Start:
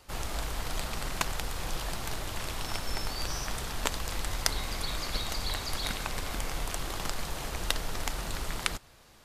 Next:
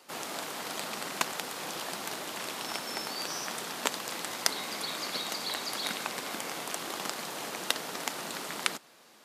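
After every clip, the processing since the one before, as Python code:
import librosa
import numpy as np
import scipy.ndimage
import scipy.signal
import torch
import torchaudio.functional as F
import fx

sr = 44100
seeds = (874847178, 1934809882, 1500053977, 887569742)

y = scipy.signal.sosfilt(scipy.signal.butter(4, 200.0, 'highpass', fs=sr, output='sos'), x)
y = F.gain(torch.from_numpy(y), 1.0).numpy()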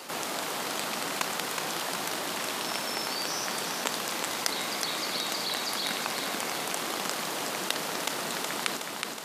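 y = fx.echo_feedback(x, sr, ms=369, feedback_pct=46, wet_db=-8.0)
y = fx.env_flatten(y, sr, amount_pct=50)
y = F.gain(torch.from_numpy(y), -2.5).numpy()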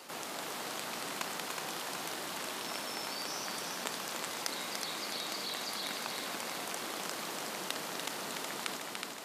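y = x + 10.0 ** (-6.0 / 20.0) * np.pad(x, (int(291 * sr / 1000.0), 0))[:len(x)]
y = F.gain(torch.from_numpy(y), -8.0).numpy()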